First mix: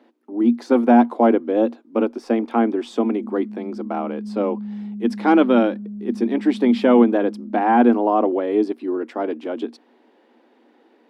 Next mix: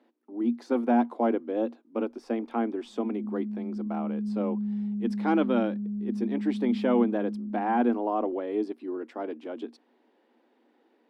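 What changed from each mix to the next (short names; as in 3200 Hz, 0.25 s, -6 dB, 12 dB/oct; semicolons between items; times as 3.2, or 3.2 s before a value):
speech -10.0 dB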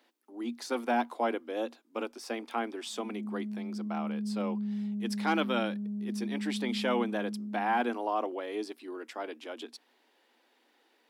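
background +8.0 dB; master: add tilt +5 dB/oct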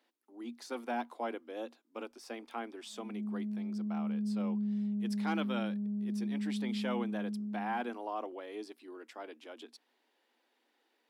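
speech -7.5 dB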